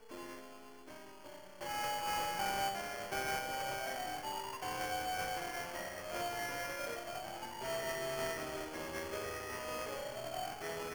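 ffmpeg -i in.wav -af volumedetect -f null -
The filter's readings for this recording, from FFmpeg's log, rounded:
mean_volume: -40.7 dB
max_volume: -26.0 dB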